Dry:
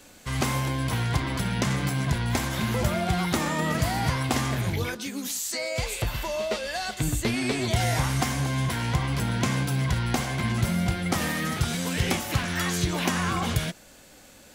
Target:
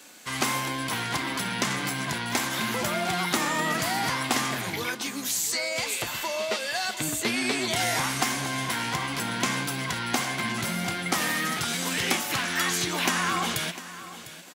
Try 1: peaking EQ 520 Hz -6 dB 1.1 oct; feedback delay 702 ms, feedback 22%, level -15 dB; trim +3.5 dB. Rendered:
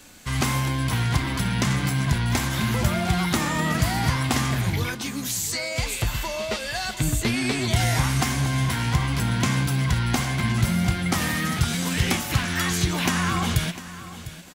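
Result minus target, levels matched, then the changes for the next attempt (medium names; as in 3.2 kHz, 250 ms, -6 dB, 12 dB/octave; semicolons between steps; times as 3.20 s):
250 Hz band +3.5 dB
add first: high-pass 300 Hz 12 dB/octave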